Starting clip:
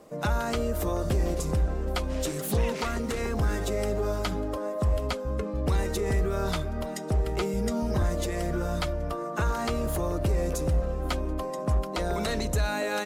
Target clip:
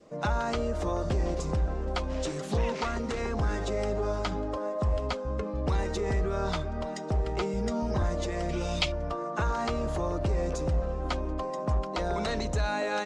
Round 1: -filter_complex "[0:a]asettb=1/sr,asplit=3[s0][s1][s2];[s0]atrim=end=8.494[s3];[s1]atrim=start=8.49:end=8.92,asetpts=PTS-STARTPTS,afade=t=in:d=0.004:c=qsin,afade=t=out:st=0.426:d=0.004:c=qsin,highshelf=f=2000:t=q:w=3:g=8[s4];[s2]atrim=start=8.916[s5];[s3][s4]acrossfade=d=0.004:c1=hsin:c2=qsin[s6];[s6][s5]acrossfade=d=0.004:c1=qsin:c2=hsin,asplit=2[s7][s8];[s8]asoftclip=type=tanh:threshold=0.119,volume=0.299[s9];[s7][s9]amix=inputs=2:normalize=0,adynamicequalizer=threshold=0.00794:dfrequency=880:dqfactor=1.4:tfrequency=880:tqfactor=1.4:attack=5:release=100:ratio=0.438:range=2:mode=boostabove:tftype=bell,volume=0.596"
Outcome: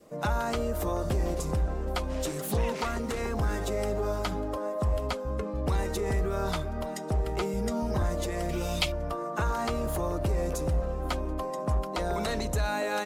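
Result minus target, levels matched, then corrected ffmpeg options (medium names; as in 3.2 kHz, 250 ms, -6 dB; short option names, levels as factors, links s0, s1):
8 kHz band +4.0 dB
-filter_complex "[0:a]asettb=1/sr,asplit=3[s0][s1][s2];[s0]atrim=end=8.494[s3];[s1]atrim=start=8.49:end=8.92,asetpts=PTS-STARTPTS,afade=t=in:d=0.004:c=qsin,afade=t=out:st=0.426:d=0.004:c=qsin,highshelf=f=2000:t=q:w=3:g=8[s4];[s2]atrim=start=8.916[s5];[s3][s4]acrossfade=d=0.004:c1=hsin:c2=qsin[s6];[s6][s5]acrossfade=d=0.004:c1=qsin:c2=hsin,asplit=2[s7][s8];[s8]asoftclip=type=tanh:threshold=0.119,volume=0.299[s9];[s7][s9]amix=inputs=2:normalize=0,adynamicequalizer=threshold=0.00794:dfrequency=880:dqfactor=1.4:tfrequency=880:tqfactor=1.4:attack=5:release=100:ratio=0.438:range=2:mode=boostabove:tftype=bell,lowpass=f=7000:w=0.5412,lowpass=f=7000:w=1.3066,volume=0.596"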